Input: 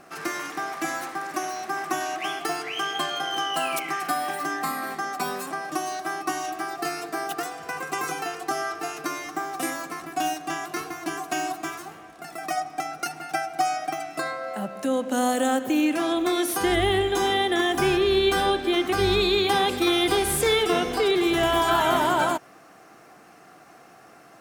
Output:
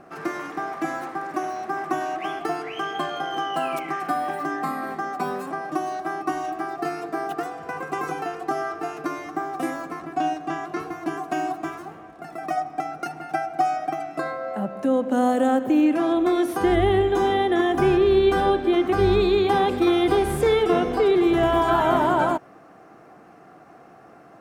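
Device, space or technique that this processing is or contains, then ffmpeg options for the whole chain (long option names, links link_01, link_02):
through cloth: -filter_complex "[0:a]asettb=1/sr,asplit=3[link_01][link_02][link_03];[link_01]atrim=end=9.994[link_04];[link_02]atrim=start=9.99:end=10.8,asetpts=PTS-STARTPTS,afade=type=in:duration=0.004:curve=qsin,afade=type=out:start_time=0.806:duration=0.004:curve=qsin,acrossover=split=7900[link_05][link_06];[link_06]acompressor=threshold=-56dB:ratio=4:attack=1:release=60[link_07];[link_05][link_07]amix=inputs=2:normalize=0[link_08];[link_03]atrim=start=10.796[link_09];[link_04][link_08]acrossfade=duration=0.004:curve1=hsin:curve2=qsin[link_10];[link_10][link_09]acrossfade=duration=0.004:curve1=qsin:curve2=hsin,highshelf=frequency=2100:gain=-17,volume=4.5dB"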